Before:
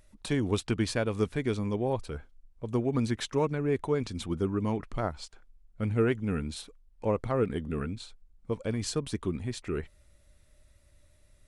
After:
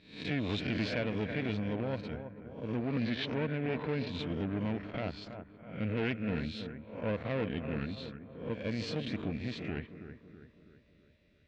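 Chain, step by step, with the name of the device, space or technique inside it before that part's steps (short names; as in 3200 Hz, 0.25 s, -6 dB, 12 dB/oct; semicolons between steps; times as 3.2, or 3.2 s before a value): spectral swells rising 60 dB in 0.53 s; 2.81–4.09 LPF 5200 Hz 24 dB/oct; analogue delay pedal into a guitar amplifier (analogue delay 0.326 s, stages 4096, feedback 50%, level -10.5 dB; tube stage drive 25 dB, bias 0.65; speaker cabinet 90–4100 Hz, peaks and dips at 120 Hz -4 dB, 380 Hz -10 dB, 840 Hz -8 dB, 1200 Hz -10 dB, 2500 Hz +5 dB); gain +1 dB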